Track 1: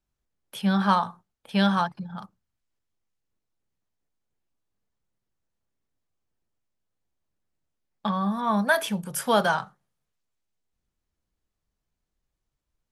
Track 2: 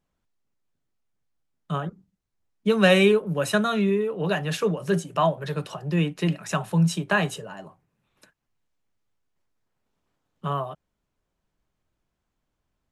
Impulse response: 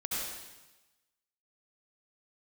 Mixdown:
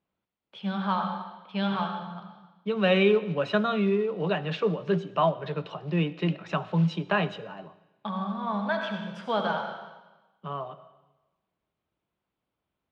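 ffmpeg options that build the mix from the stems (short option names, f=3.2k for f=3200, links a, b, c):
-filter_complex "[0:a]highshelf=f=8.6k:g=6,volume=-9dB,asplit=3[a][b][c];[b]volume=-4.5dB[d];[1:a]volume=-2dB,asplit=2[e][f];[f]volume=-21dB[g];[c]apad=whole_len=569647[h];[e][h]sidechaincompress=threshold=-47dB:ratio=8:attack=12:release=950[i];[2:a]atrim=start_sample=2205[j];[d][g]amix=inputs=2:normalize=0[k];[k][j]afir=irnorm=-1:irlink=0[l];[a][i][l]amix=inputs=3:normalize=0,acrusher=bits=7:mode=log:mix=0:aa=0.000001,highpass=110,equalizer=f=130:t=q:w=4:g=-4,equalizer=f=250:t=q:w=4:g=-3,equalizer=f=1.7k:t=q:w=4:g=-5,lowpass=f=3.7k:w=0.5412,lowpass=f=3.7k:w=1.3066"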